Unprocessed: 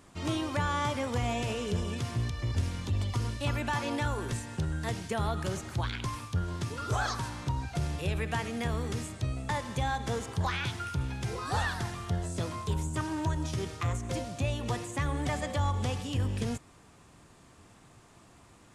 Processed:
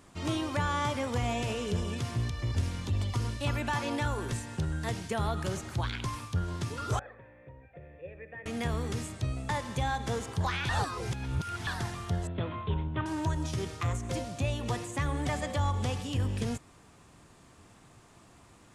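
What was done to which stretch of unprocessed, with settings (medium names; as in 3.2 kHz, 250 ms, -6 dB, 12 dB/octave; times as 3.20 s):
6.99–8.46 s: cascade formant filter e
10.69–11.67 s: reverse
12.27–13.06 s: steep low-pass 3.6 kHz 72 dB/octave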